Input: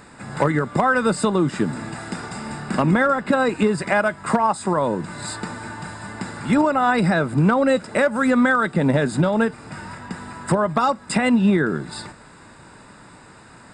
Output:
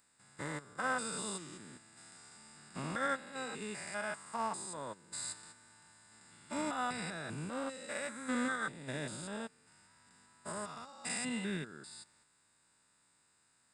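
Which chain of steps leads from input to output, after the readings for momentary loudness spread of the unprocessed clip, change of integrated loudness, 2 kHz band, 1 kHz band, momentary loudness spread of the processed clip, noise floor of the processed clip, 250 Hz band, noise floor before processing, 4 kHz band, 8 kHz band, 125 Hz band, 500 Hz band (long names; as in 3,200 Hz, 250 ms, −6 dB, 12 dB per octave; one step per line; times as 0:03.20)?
16 LU, −19.5 dB, −17.0 dB, −19.5 dB, 19 LU, −73 dBFS, −22.5 dB, −46 dBFS, −12.0 dB, −7.0 dB, −24.5 dB, −22.5 dB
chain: spectrum averaged block by block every 200 ms
first-order pre-emphasis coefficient 0.9
expander for the loud parts 2.5 to 1, over −47 dBFS
level +3.5 dB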